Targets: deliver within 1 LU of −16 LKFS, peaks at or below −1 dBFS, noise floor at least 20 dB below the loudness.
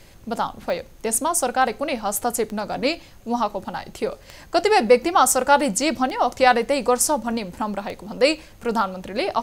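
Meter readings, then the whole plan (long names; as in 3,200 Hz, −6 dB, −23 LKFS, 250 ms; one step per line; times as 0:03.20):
number of clicks 5; integrated loudness −21.5 LKFS; sample peak −2.5 dBFS; target loudness −16.0 LKFS
→ click removal
level +5.5 dB
brickwall limiter −1 dBFS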